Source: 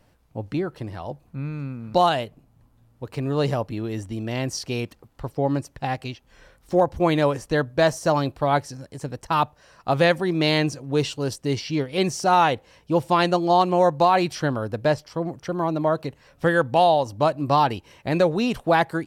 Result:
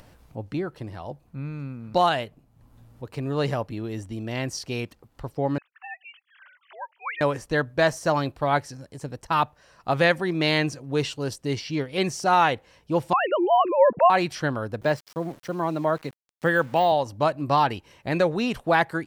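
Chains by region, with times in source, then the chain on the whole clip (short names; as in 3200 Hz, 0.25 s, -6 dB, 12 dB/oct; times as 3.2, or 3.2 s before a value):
5.58–7.21 sine-wave speech + HPF 1200 Hz 24 dB/oct
13.13–14.1 sine-wave speech + low shelf 230 Hz +11.5 dB
14.81–16.92 HPF 120 Hz 24 dB/oct + de-esser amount 80% + sample gate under -42 dBFS
whole clip: dynamic EQ 1800 Hz, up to +5 dB, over -37 dBFS, Q 1.1; upward compressor, threshold -38 dBFS; gain -3 dB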